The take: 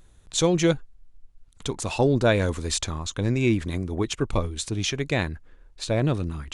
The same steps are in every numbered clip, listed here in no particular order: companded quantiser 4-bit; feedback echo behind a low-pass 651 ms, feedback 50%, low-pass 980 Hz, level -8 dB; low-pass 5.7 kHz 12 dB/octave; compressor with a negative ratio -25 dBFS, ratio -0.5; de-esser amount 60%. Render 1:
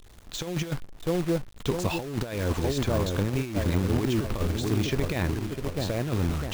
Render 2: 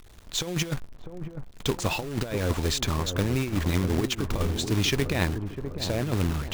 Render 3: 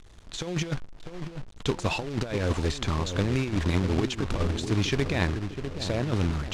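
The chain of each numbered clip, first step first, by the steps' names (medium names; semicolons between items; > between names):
feedback echo behind a low-pass > compressor with a negative ratio > low-pass > companded quantiser > de-esser; low-pass > de-esser > compressor with a negative ratio > companded quantiser > feedback echo behind a low-pass; compressor with a negative ratio > feedback echo behind a low-pass > de-esser > companded quantiser > low-pass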